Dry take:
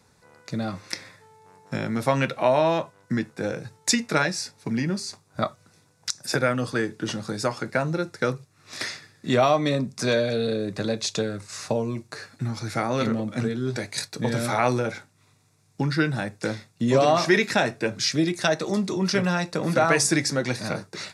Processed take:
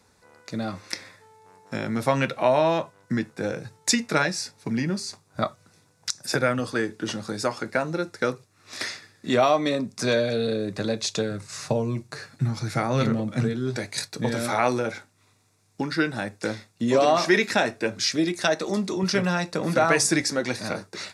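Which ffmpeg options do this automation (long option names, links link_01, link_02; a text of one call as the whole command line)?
ffmpeg -i in.wav -af "asetnsamples=nb_out_samples=441:pad=0,asendcmd='1.87 equalizer g -1.5;6.59 equalizer g -10;9.97 equalizer g -2.5;11.31 equalizer g 8.5;13.53 equalizer g -1;14.3 equalizer g -12.5;19.03 equalizer g -4;20.21 equalizer g -12',equalizer=frequency=140:width_type=o:width=0.38:gain=-11.5" out.wav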